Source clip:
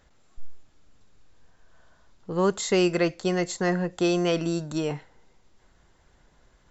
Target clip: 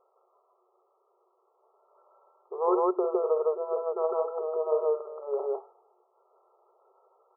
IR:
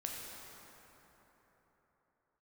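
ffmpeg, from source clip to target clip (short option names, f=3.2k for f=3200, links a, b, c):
-af "afftfilt=real='re*between(b*sr/4096,390,1500)':imag='im*between(b*sr/4096,390,1500)':win_size=4096:overlap=0.75,asetrate=40131,aresample=44100,aecho=1:1:49.56|157.4:0.355|1"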